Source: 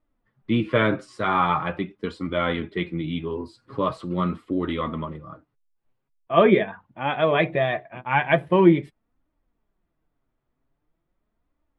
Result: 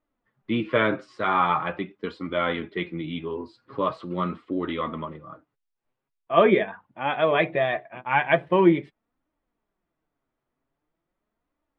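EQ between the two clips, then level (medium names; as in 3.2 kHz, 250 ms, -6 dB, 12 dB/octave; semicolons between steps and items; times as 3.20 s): low-pass 4.2 kHz 12 dB/octave; bass shelf 150 Hz -12 dB; 0.0 dB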